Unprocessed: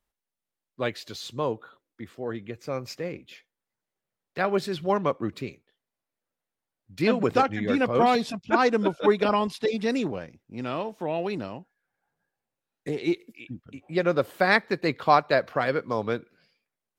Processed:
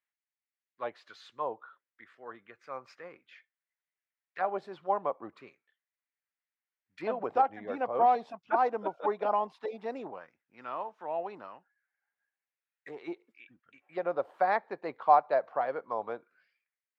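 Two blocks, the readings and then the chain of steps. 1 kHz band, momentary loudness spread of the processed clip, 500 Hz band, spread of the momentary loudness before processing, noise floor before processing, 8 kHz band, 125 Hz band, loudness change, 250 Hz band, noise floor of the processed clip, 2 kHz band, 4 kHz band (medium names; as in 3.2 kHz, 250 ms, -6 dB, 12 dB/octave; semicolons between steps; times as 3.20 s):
-2.0 dB, 22 LU, -7.5 dB, 17 LU, under -85 dBFS, under -20 dB, under -20 dB, -5.5 dB, -16.5 dB, under -85 dBFS, -13.0 dB, under -15 dB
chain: auto-wah 780–2000 Hz, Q 2.6, down, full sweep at -23.5 dBFS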